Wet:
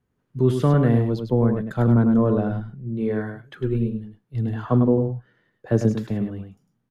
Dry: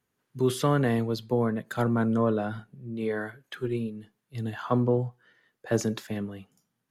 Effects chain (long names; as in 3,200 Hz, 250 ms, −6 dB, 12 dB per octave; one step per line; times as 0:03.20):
spectral tilt −3 dB per octave
single-tap delay 102 ms −6.5 dB